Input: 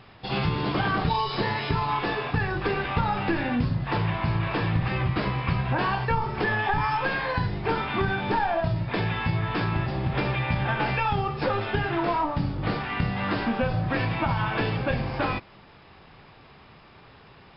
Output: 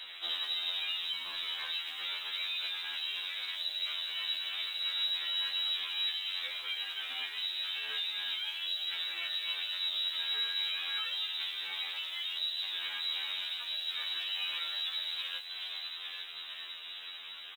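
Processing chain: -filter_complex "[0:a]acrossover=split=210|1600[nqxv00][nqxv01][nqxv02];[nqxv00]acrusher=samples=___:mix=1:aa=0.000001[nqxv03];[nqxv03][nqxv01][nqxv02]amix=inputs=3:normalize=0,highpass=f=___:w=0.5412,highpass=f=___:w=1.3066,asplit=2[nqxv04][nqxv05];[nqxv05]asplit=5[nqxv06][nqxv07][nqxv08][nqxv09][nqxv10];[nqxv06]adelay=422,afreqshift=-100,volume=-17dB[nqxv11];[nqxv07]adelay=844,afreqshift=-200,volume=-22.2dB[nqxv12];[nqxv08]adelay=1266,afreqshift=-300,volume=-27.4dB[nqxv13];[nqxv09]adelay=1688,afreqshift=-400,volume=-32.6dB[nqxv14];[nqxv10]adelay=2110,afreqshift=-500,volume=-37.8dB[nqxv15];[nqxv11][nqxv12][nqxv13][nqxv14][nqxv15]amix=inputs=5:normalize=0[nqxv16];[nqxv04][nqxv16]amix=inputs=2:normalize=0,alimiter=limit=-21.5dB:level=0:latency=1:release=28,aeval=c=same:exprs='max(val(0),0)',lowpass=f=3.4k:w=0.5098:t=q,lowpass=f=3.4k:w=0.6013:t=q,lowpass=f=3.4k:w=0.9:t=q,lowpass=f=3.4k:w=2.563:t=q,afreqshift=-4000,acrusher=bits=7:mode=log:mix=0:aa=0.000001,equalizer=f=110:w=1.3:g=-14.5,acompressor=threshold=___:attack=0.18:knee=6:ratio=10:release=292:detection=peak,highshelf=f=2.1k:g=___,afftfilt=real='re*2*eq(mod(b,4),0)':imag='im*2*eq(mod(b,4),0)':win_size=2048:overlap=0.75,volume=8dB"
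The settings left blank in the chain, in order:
39, 48, 48, -38dB, 6.5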